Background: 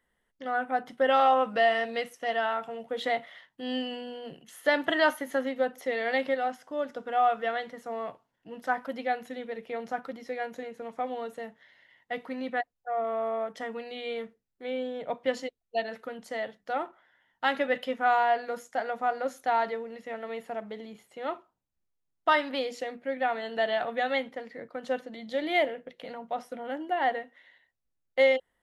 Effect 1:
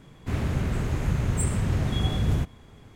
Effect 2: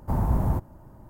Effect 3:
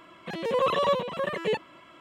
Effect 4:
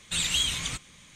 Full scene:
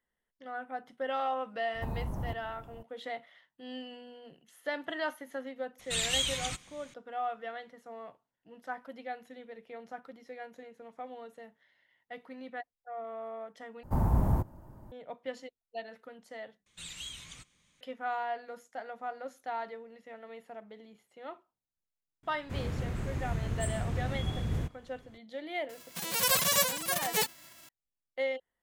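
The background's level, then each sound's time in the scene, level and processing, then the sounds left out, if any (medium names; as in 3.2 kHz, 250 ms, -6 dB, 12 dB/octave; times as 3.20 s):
background -10.5 dB
1.74 s: add 2 -3 dB + compression, threshold -29 dBFS
5.79 s: add 4 -4 dB
13.83 s: replace with 2 -3 dB
16.66 s: replace with 4 -17 dB
22.23 s: add 1 -8.5 dB
25.69 s: add 3 -2.5 dB + formants flattened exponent 0.1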